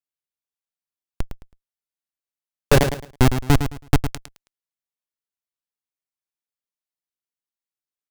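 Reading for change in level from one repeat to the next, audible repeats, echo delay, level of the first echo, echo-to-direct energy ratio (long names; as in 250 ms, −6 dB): −12.5 dB, 3, 108 ms, −9.0 dB, −8.5 dB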